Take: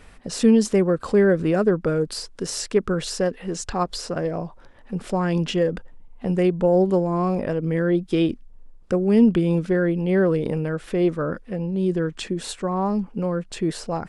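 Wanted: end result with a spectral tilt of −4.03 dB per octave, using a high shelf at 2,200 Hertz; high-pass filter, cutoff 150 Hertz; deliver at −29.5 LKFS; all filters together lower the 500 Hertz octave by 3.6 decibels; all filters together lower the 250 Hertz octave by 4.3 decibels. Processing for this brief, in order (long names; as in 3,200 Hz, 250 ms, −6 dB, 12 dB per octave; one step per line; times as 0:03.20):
high-pass filter 150 Hz
parametric band 250 Hz −4 dB
parametric band 500 Hz −3.5 dB
high-shelf EQ 2,200 Hz +8.5 dB
level −5 dB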